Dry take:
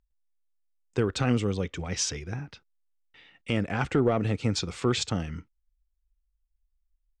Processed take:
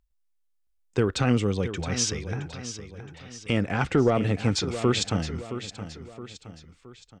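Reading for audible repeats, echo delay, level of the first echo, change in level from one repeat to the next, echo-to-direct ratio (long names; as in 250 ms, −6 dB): 3, 669 ms, −11.5 dB, −6.5 dB, −10.5 dB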